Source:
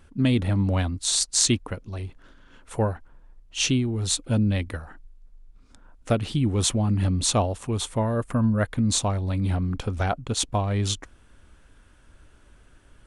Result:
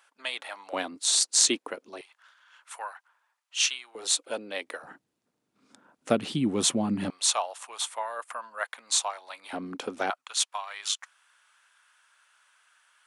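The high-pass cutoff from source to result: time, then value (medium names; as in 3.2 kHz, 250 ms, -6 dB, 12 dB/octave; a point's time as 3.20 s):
high-pass 24 dB/octave
750 Hz
from 0.73 s 320 Hz
from 2.01 s 960 Hz
from 3.95 s 430 Hz
from 4.83 s 180 Hz
from 7.10 s 770 Hz
from 9.53 s 270 Hz
from 10.10 s 990 Hz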